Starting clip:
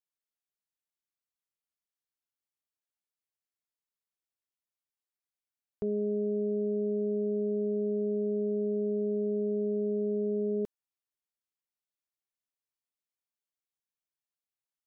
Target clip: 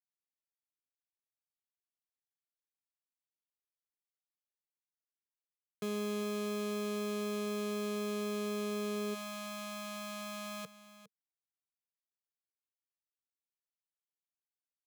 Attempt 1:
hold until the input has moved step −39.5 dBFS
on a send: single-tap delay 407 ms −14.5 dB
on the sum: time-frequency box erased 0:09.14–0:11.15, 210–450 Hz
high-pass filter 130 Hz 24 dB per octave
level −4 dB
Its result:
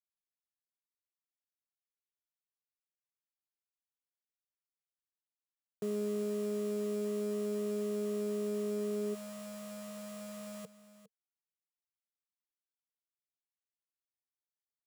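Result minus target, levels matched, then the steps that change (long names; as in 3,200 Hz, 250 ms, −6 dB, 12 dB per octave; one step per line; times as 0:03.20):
hold until the input has moved: distortion −5 dB
change: hold until the input has moved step −28.5 dBFS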